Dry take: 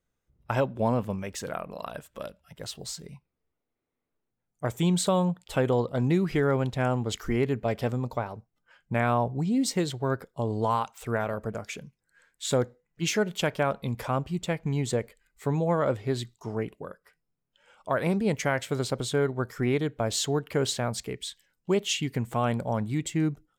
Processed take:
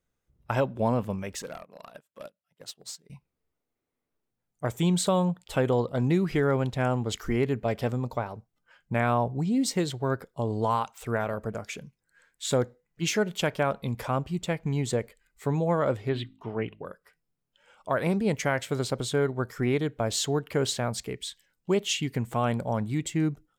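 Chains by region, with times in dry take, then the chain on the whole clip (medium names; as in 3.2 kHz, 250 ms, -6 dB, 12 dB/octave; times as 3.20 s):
1.42–3.10 s: high-pass 170 Hz + overload inside the chain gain 30 dB + upward expansion 2.5:1, over -50 dBFS
16.09–16.85 s: resonant high shelf 4.3 kHz -13.5 dB, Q 3 + de-hum 52.72 Hz, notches 6
whole clip: none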